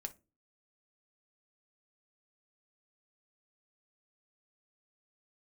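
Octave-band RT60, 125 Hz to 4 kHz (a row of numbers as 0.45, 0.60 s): 0.50, 0.45, 0.35, 0.20, 0.20, 0.20 s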